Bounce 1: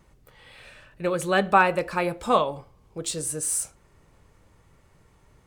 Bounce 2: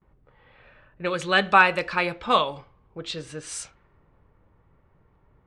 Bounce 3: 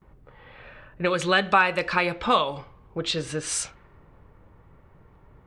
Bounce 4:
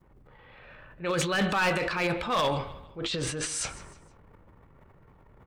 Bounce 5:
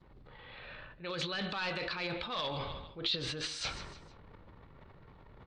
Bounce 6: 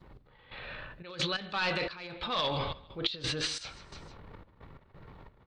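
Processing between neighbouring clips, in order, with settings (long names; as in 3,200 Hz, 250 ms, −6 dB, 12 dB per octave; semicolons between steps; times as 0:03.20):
low-pass that shuts in the quiet parts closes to 860 Hz, open at −19.5 dBFS; noise gate with hold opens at −51 dBFS; drawn EQ curve 660 Hz 0 dB, 1,500 Hz +7 dB, 3,600 Hz +11 dB, 5,800 Hz +6 dB, 14,000 Hz −8 dB; level −2.5 dB
downward compressor 2 to 1, threshold −31 dBFS, peak gain reduction 11.5 dB; level +7.5 dB
transient designer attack −7 dB, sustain +11 dB; repeating echo 155 ms, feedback 38%, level −18 dB; hard clipping −17 dBFS, distortion −12 dB; level −4 dB
reversed playback; downward compressor 6 to 1, threshold −37 dBFS, peak gain reduction 13 dB; reversed playback; low-pass with resonance 4,100 Hz, resonance Q 3.6
gate pattern "x..xxx.x.x" 88 BPM −12 dB; level +5.5 dB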